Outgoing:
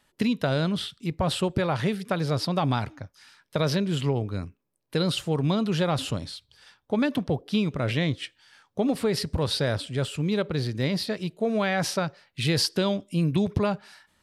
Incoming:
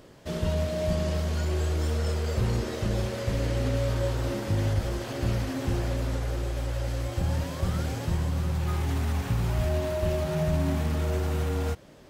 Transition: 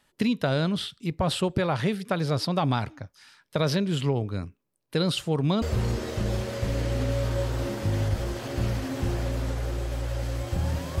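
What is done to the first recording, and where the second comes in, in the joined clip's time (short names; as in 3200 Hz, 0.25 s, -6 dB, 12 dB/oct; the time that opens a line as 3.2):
outgoing
5.62 switch to incoming from 2.27 s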